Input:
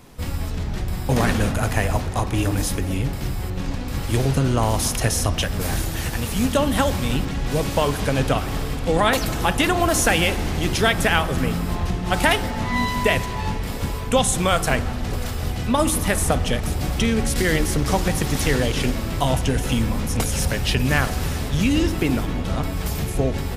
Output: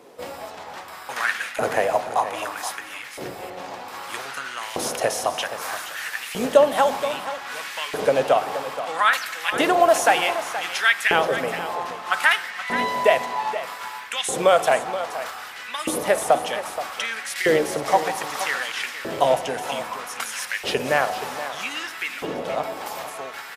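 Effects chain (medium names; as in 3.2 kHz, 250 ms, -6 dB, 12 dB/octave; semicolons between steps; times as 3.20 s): LFO high-pass saw up 0.63 Hz 430–2100 Hz; tilt EQ -1.5 dB/octave; delay 475 ms -12 dB; dynamic bell 150 Hz, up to +6 dB, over -47 dBFS, Q 2.5; trim -1 dB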